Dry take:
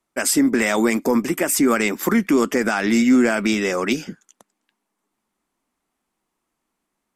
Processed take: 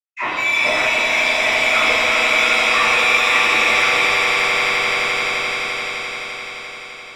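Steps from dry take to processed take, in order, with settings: LPC vocoder at 8 kHz pitch kept; expander -36 dBFS; inverted band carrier 2600 Hz; overdrive pedal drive 17 dB, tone 1100 Hz, clips at -3 dBFS; swelling echo 86 ms, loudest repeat 8, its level -8.5 dB; in parallel at +2 dB: limiter -10.5 dBFS, peak gain reduction 8.5 dB; on the sum: dispersion lows, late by 54 ms, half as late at 850 Hz; shimmer reverb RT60 1.2 s, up +7 st, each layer -8 dB, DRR -11 dB; gain -17 dB

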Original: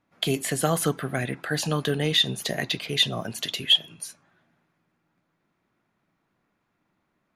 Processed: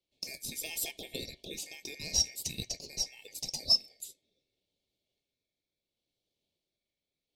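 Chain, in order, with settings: rotary speaker horn 0.75 Hz; ring modulator 2000 Hz; Chebyshev band-stop 470–4200 Hz, order 2

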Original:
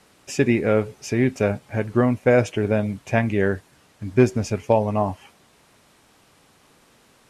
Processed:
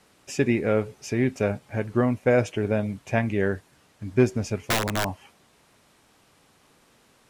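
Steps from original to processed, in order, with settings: 4.58–5.06 wrapped overs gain 14 dB; gain -3.5 dB

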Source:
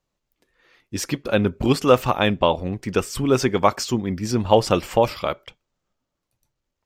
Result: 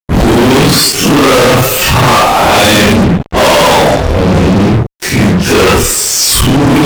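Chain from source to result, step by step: Paulstretch 4×, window 0.05 s, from 1.57; fuzz box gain 36 dB, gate -40 dBFS; gate with hold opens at -16 dBFS; gain +8 dB

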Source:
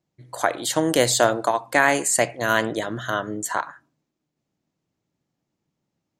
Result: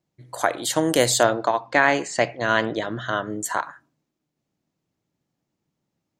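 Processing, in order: 1.23–3.3 LPF 5400 Hz 24 dB/oct

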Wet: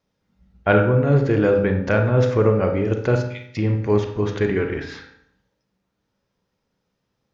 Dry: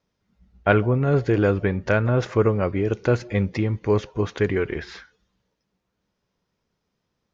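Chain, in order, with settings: 3.16–3.57 steep high-pass 2300 Hz; on a send: reverb RT60 0.70 s, pre-delay 31 ms, DRR 3.5 dB

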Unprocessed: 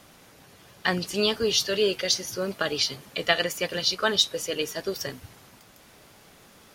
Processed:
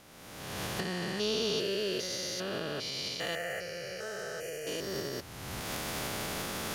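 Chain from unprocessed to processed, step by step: stepped spectrum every 0.4 s; recorder AGC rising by 34 dB/s; 3.35–4.67 fixed phaser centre 1000 Hz, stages 6; gain -3 dB

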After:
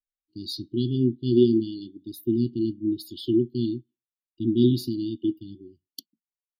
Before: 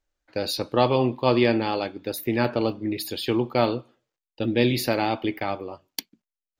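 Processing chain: brick-wall FIR band-stop 390–2800 Hz; spectral expander 1.5:1; gain +2.5 dB

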